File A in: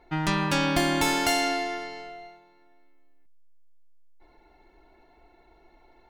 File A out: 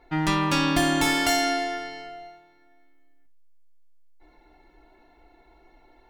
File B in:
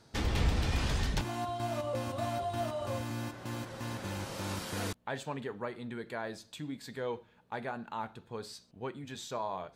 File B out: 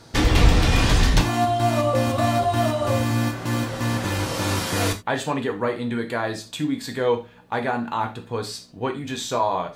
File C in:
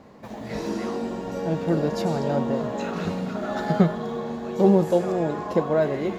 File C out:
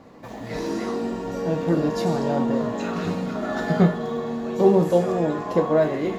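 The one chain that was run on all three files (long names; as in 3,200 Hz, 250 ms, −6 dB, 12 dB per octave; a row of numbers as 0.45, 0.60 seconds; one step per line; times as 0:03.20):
reverb whose tail is shaped and stops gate 110 ms falling, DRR 4 dB
loudness normalisation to −23 LKFS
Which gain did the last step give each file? 0.0, +12.5, 0.0 decibels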